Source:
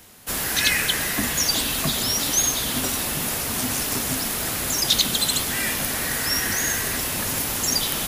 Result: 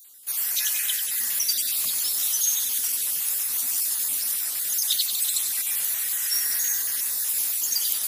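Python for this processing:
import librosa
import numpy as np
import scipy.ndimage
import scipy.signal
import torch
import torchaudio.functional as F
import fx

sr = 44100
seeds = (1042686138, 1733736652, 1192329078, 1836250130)

y = fx.spec_dropout(x, sr, seeds[0], share_pct=29)
y = librosa.effects.preemphasis(y, coef=0.97, zi=[0.0])
y = fx.echo_feedback(y, sr, ms=93, feedback_pct=56, wet_db=-8.5)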